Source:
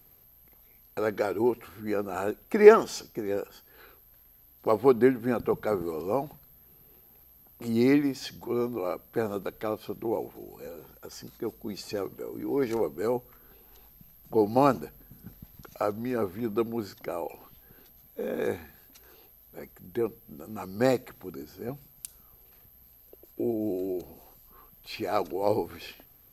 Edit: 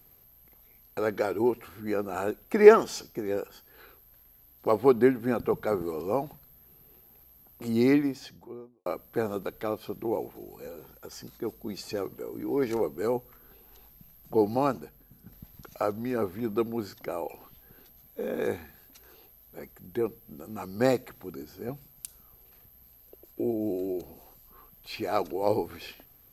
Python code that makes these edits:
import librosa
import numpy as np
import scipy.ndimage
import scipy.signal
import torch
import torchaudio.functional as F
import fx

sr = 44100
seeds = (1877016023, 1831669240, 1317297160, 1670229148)

y = fx.studio_fade_out(x, sr, start_s=7.87, length_s=0.99)
y = fx.edit(y, sr, fx.clip_gain(start_s=14.56, length_s=0.76, db=-4.5), tone=tone)